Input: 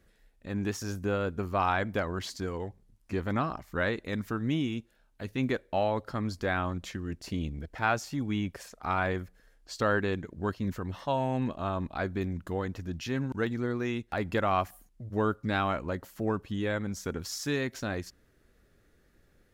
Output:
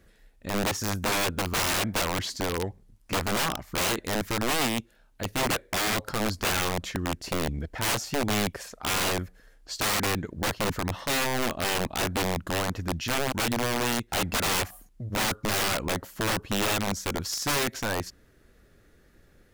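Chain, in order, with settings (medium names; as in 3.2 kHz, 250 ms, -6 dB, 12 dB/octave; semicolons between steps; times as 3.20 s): integer overflow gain 26.5 dB; trim +6 dB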